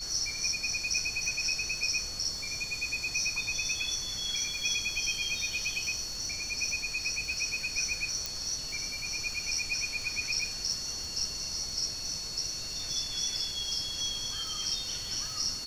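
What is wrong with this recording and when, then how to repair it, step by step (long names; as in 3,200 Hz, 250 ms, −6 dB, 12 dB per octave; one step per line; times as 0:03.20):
surface crackle 47 per second −39 dBFS
whistle 4,400 Hz −38 dBFS
0:08.26: click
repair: click removal
notch filter 4,400 Hz, Q 30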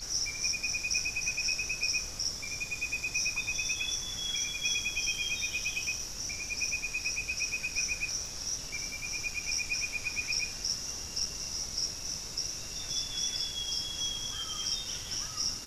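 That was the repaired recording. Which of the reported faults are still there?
0:08.26: click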